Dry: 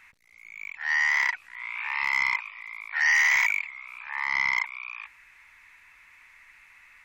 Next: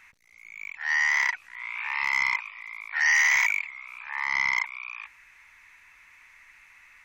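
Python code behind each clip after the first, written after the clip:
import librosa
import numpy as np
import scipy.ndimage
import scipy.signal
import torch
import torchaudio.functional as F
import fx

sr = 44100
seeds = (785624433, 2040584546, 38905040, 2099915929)

y = fx.peak_eq(x, sr, hz=6100.0, db=5.0, octaves=0.23)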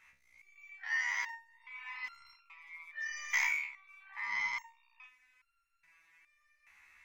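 y = fx.resonator_held(x, sr, hz=2.4, low_hz=70.0, high_hz=1400.0)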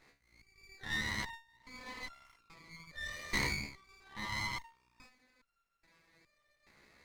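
y = fx.running_max(x, sr, window=9)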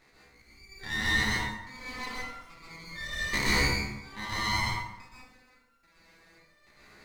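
y = fx.rev_plate(x, sr, seeds[0], rt60_s=0.93, hf_ratio=0.6, predelay_ms=110, drr_db=-6.5)
y = F.gain(torch.from_numpy(y), 3.0).numpy()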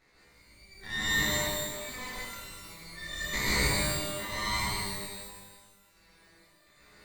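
y = fx.rev_shimmer(x, sr, seeds[1], rt60_s=1.0, semitones=12, shimmer_db=-2, drr_db=2.0)
y = F.gain(torch.from_numpy(y), -5.0).numpy()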